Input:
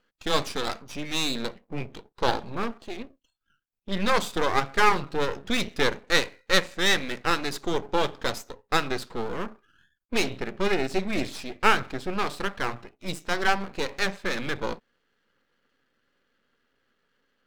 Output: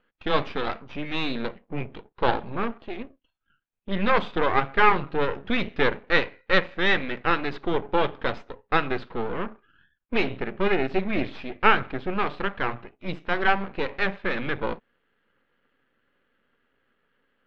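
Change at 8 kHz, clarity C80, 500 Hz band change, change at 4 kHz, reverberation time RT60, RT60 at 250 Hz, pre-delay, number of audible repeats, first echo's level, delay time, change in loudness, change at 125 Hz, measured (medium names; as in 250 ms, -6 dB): under -20 dB, no reverb, +2.0 dB, -4.5 dB, no reverb, no reverb, no reverb, no echo, no echo, no echo, +1.0 dB, +2.0 dB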